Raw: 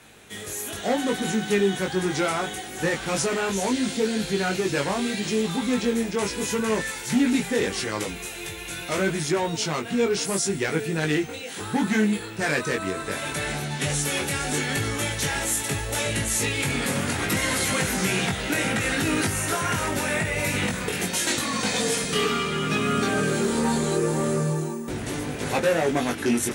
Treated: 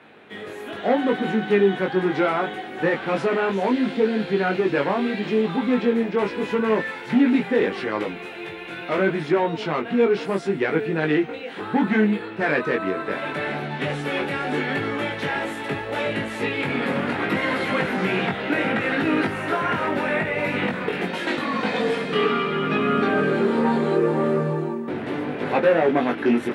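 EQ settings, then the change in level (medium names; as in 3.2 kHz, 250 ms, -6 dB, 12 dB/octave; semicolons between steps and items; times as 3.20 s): high-pass 220 Hz 12 dB/octave; distance through air 450 m; +6.0 dB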